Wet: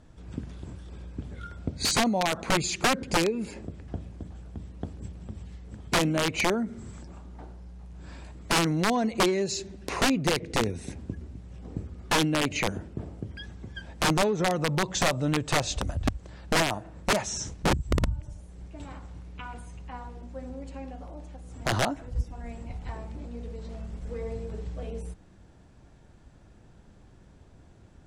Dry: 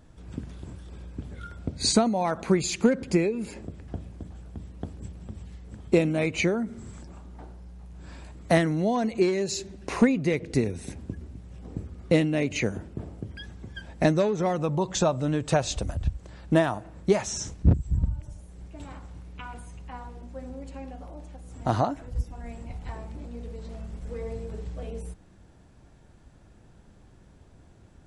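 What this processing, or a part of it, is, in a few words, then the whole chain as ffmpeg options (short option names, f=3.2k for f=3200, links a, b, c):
overflowing digital effects unit: -af "aeval=exprs='(mod(6.68*val(0)+1,2)-1)/6.68':c=same,lowpass=9.3k"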